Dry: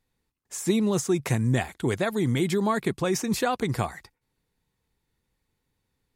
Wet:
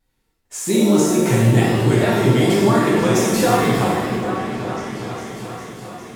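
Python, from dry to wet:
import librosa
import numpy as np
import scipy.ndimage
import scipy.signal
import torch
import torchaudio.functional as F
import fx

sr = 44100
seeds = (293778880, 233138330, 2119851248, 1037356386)

y = fx.echo_opening(x, sr, ms=404, hz=750, octaves=1, feedback_pct=70, wet_db=-6)
y = fx.vibrato(y, sr, rate_hz=4.5, depth_cents=61.0)
y = fx.rev_shimmer(y, sr, seeds[0], rt60_s=1.1, semitones=7, shimmer_db=-8, drr_db=-6.0)
y = F.gain(torch.from_numpy(y), 1.0).numpy()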